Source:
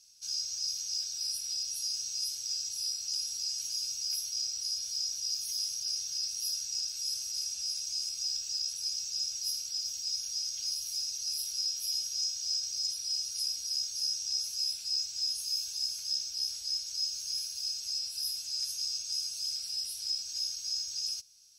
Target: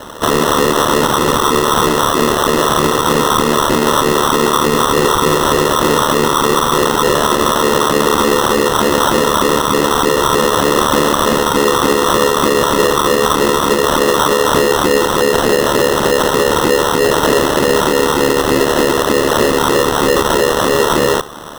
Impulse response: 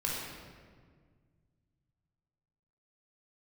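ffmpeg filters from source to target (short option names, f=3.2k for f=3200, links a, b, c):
-af "lowpass=8.4k,equalizer=f=3.5k:w=4.9:g=12.5,acrusher=samples=19:mix=1:aa=0.000001,aeval=exprs='val(0)*sin(2*PI*37*n/s)':c=same,alimiter=level_in=36dB:limit=-1dB:release=50:level=0:latency=1,volume=-3.5dB"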